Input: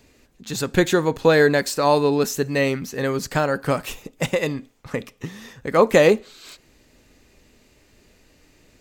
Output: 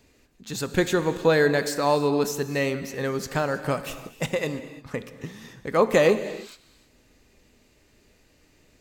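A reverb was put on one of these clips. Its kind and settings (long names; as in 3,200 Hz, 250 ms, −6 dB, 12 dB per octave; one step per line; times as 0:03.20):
reverb whose tail is shaped and stops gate 360 ms flat, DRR 11 dB
level −4.5 dB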